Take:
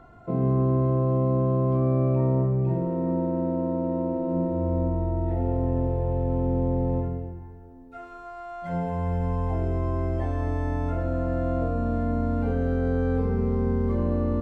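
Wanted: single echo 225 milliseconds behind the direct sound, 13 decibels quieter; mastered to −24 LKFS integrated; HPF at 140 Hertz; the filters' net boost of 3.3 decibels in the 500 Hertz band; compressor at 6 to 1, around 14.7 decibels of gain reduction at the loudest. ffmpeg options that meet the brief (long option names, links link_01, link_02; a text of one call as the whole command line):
ffmpeg -i in.wav -af "highpass=140,equalizer=frequency=500:width_type=o:gain=4,acompressor=threshold=-36dB:ratio=6,aecho=1:1:225:0.224,volume=15dB" out.wav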